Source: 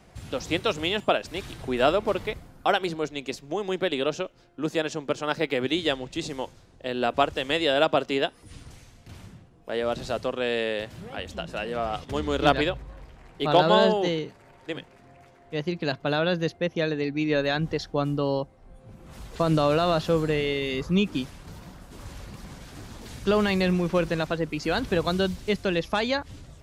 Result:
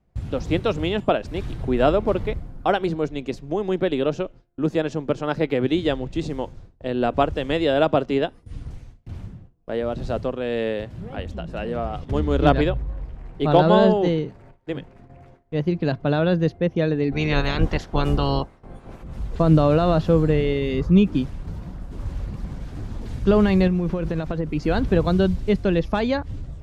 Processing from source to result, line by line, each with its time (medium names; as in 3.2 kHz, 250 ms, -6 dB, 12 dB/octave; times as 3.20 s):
8.05–12.31 s: tremolo triangle 2 Hz, depth 35%
17.11–19.02 s: spectral peaks clipped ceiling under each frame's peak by 23 dB
23.67–24.55 s: compression 12:1, threshold -25 dBFS
whole clip: gate with hold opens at -43 dBFS; tilt EQ -3 dB/octave; trim +1 dB